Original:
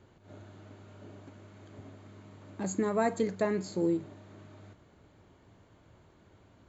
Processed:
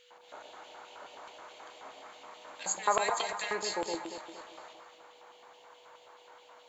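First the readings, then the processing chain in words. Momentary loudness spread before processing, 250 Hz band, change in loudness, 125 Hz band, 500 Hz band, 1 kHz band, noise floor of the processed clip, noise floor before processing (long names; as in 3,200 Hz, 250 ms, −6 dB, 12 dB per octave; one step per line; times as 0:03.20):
22 LU, −14.0 dB, −2.0 dB, −19.0 dB, −4.5 dB, +6.0 dB, −58 dBFS, −62 dBFS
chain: auto-filter high-pass square 4.7 Hz 880–3,000 Hz
steady tone 490 Hz −71 dBFS
delay that swaps between a low-pass and a high-pass 116 ms, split 850 Hz, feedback 64%, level −3 dB
level +7.5 dB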